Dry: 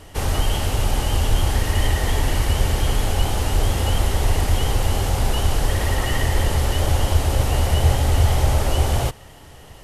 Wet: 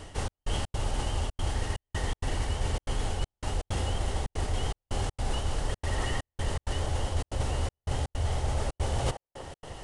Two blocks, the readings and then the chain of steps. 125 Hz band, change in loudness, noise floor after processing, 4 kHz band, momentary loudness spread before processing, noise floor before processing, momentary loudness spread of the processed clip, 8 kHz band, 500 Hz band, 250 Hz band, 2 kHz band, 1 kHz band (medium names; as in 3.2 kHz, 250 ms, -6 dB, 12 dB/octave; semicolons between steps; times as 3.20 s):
-12.0 dB, -12.0 dB, under -85 dBFS, -11.5 dB, 4 LU, -43 dBFS, 4 LU, -12.0 dB, -10.0 dB, -11.0 dB, -11.0 dB, -10.0 dB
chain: band-stop 2.4 kHz, Q 30; reverse; compression 12:1, threshold -25 dBFS, peak gain reduction 15 dB; reverse; resampled via 22.05 kHz; on a send: feedback echo behind a band-pass 158 ms, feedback 67%, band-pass 630 Hz, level -7.5 dB; on the sum: trance gate "xxx..xx.xxxxxx.x" 162 bpm -60 dB